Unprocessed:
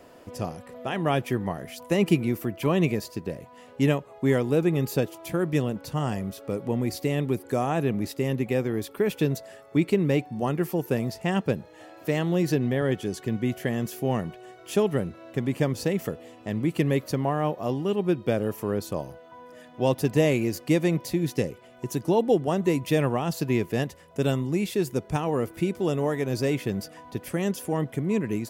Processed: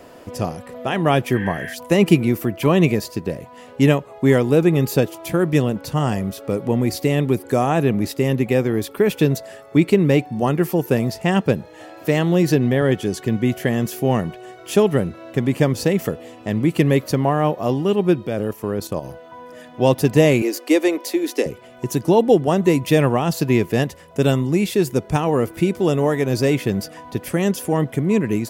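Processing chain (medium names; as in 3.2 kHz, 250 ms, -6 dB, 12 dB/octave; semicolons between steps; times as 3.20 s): 1.37–1.71 s: spectral replace 1.5–3.3 kHz before; 18.27–19.05 s: level held to a coarse grid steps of 10 dB; 20.42–21.46 s: steep high-pass 270 Hz 48 dB/octave; trim +7.5 dB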